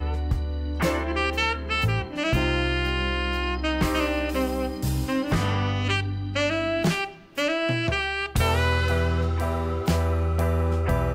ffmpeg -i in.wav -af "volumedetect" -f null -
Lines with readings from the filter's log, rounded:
mean_volume: -24.4 dB
max_volume: -12.0 dB